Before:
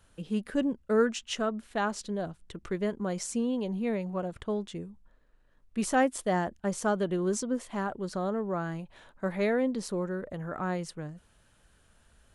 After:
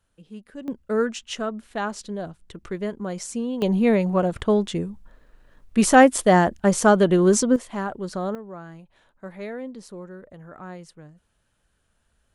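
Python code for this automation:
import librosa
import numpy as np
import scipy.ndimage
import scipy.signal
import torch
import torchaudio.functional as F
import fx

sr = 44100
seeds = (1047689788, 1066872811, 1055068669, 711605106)

y = fx.gain(x, sr, db=fx.steps((0.0, -9.5), (0.68, 2.0), (3.62, 12.0), (7.56, 4.0), (8.35, -6.5)))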